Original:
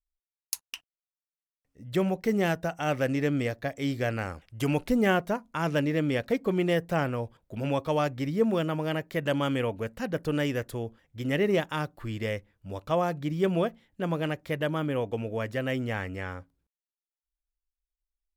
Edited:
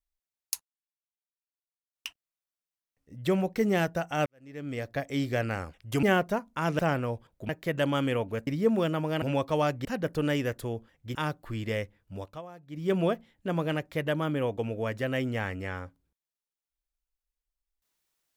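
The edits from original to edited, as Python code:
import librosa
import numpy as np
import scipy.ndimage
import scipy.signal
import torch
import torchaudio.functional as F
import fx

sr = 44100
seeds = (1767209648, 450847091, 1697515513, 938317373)

y = fx.edit(x, sr, fx.insert_silence(at_s=0.63, length_s=1.32),
    fx.fade_in_span(start_s=2.94, length_s=0.69, curve='qua'),
    fx.cut(start_s=4.71, length_s=0.3),
    fx.cut(start_s=5.77, length_s=1.12),
    fx.swap(start_s=7.59, length_s=0.63, other_s=8.97, other_length_s=0.98),
    fx.cut(start_s=11.25, length_s=0.44),
    fx.fade_down_up(start_s=12.68, length_s=0.81, db=-19.0, fade_s=0.28), tone=tone)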